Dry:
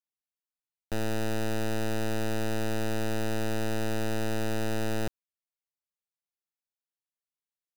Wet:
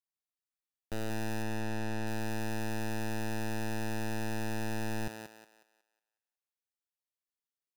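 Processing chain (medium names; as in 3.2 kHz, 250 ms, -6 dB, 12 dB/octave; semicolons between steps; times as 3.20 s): 1.42–2.07 s: treble shelf 7.1 kHz -9.5 dB; thinning echo 183 ms, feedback 37%, high-pass 340 Hz, level -5 dB; trim -5.5 dB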